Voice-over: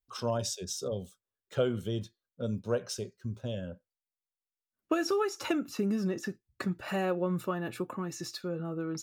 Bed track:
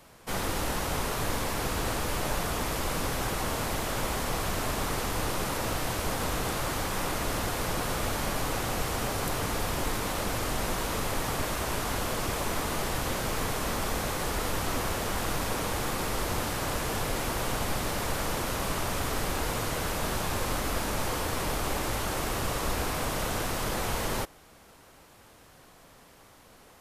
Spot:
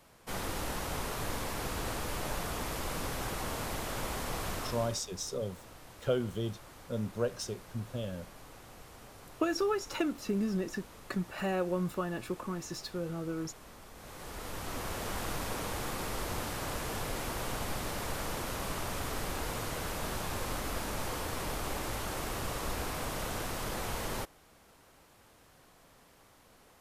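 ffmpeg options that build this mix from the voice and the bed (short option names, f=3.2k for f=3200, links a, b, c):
-filter_complex "[0:a]adelay=4500,volume=-1.5dB[a];[1:a]volume=9.5dB,afade=t=out:st=4.52:d=0.51:silence=0.16788,afade=t=in:st=13.94:d=1.15:silence=0.16788[b];[a][b]amix=inputs=2:normalize=0"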